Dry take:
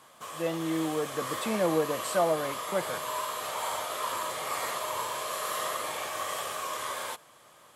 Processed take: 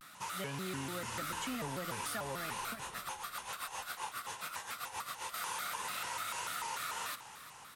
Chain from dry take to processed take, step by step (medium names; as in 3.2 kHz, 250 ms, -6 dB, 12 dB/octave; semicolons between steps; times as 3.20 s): high-order bell 510 Hz -11 dB; compression, threshold -40 dBFS, peak gain reduction 12 dB; 2.71–5.34 s: tremolo 7.5 Hz, depth 77%; frequency-shifting echo 355 ms, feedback 51%, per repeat -64 Hz, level -15 dB; vibrato with a chosen wave square 3.4 Hz, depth 250 cents; trim +3 dB